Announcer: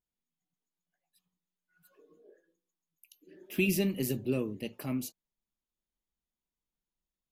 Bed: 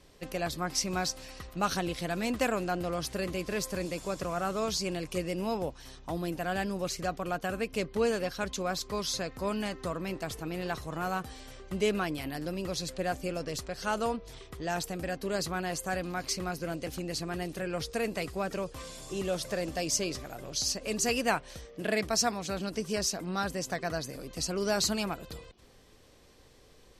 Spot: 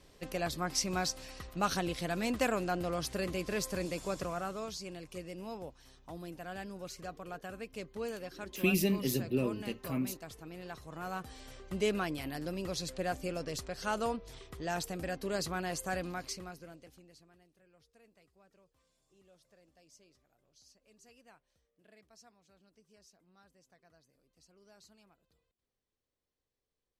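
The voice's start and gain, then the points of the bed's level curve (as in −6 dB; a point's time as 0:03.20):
5.05 s, −0.5 dB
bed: 0:04.18 −2 dB
0:04.75 −11 dB
0:10.76 −11 dB
0:11.47 −3 dB
0:16.06 −3 dB
0:17.51 −32.5 dB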